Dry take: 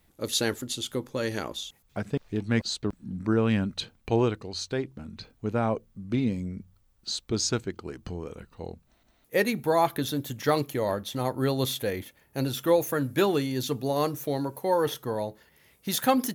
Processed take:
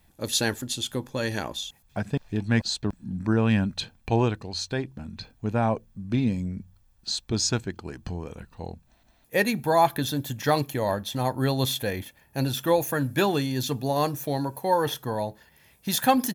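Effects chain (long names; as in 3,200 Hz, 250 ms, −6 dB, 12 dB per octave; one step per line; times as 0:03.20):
comb filter 1.2 ms, depth 36%
level +2 dB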